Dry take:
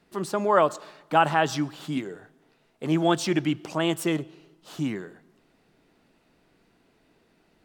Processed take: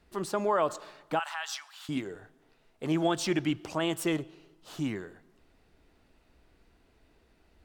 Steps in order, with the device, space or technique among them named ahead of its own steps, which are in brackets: car stereo with a boomy subwoofer (resonant low shelf 100 Hz +12 dB, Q 1.5; peak limiter -14 dBFS, peak gain reduction 8 dB); 1.19–1.89 s: Bessel high-pass 1.4 kHz, order 6; trim -2.5 dB

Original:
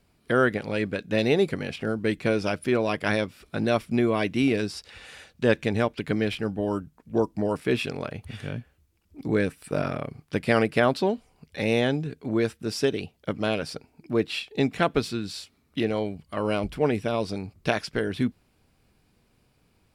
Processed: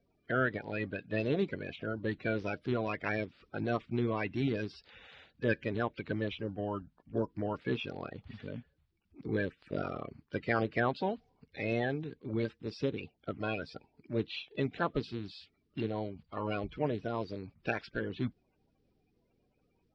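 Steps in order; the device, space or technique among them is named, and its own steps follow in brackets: clip after many re-uploads (low-pass 4.3 kHz 24 dB/octave; coarse spectral quantiser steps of 30 dB); trim -8.5 dB

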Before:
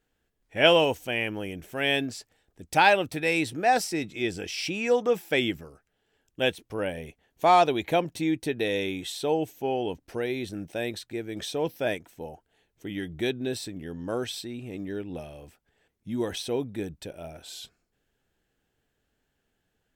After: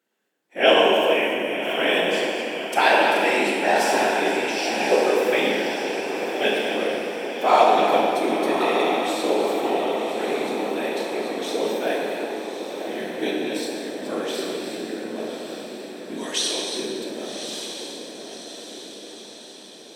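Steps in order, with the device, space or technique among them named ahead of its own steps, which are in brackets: chunks repeated in reverse 227 ms, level -8.5 dB; 16.16–16.75 s: frequency weighting ITU-R 468; echo that smears into a reverb 1126 ms, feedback 56%, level -7 dB; whispering ghost (whisper effect; high-pass 240 Hz 24 dB/octave; reverberation RT60 2.3 s, pre-delay 16 ms, DRR -2 dB)

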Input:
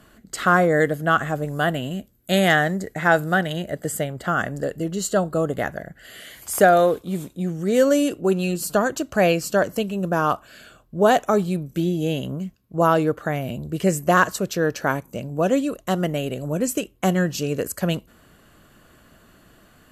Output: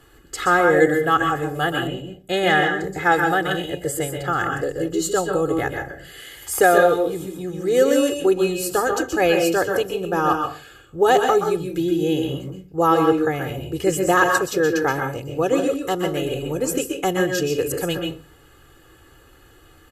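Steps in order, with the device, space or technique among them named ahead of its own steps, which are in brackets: microphone above a desk (comb 2.4 ms, depth 85%; reverberation RT60 0.35 s, pre-delay 119 ms, DRR 3.5 dB); 1.87–2.84 s: low-pass 3 kHz 6 dB/octave; trim -1.5 dB

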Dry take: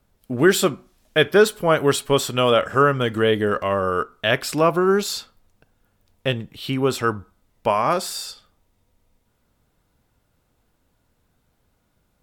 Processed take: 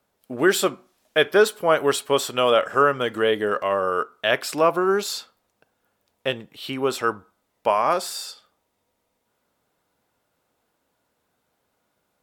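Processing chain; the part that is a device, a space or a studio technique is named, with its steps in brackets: filter by subtraction (in parallel: low-pass 600 Hz 12 dB/octave + polarity flip); on the sum: trim -2 dB

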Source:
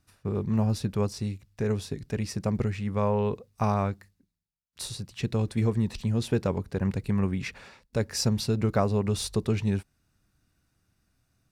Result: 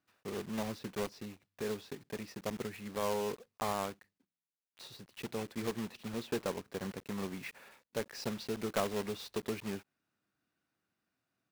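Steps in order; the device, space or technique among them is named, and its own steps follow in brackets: early digital voice recorder (band-pass 260–3400 Hz; block-companded coder 3-bit); trim -7 dB

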